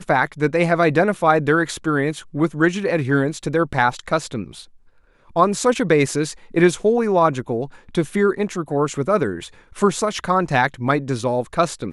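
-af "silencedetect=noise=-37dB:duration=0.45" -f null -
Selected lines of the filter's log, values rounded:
silence_start: 4.65
silence_end: 5.30 | silence_duration: 0.66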